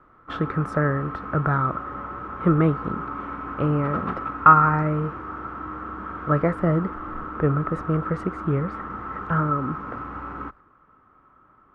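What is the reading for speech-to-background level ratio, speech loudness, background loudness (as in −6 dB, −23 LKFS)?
10.0 dB, −23.0 LKFS, −33.0 LKFS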